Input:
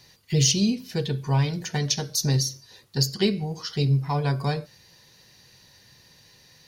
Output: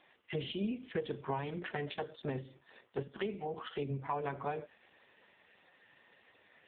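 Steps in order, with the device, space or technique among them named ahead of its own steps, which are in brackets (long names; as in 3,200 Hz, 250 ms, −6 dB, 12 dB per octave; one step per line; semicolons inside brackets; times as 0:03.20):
0:03.07–0:03.54: elliptic band-pass filter 180–5,300 Hz, stop band 60 dB
voicemail (band-pass filter 350–2,800 Hz; downward compressor 8 to 1, threshold −34 dBFS, peak gain reduction 12.5 dB; level +2.5 dB; AMR narrowband 4.75 kbit/s 8,000 Hz)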